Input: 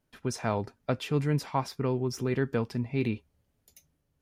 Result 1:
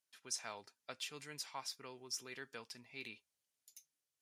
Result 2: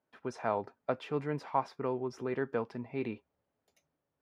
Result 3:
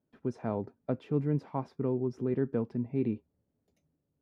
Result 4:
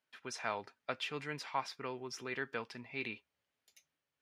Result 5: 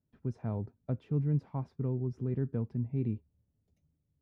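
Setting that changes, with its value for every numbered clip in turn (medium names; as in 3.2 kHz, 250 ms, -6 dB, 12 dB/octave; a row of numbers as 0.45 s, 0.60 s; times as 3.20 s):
band-pass filter, frequency: 7.4 kHz, 810 Hz, 280 Hz, 2.4 kHz, 110 Hz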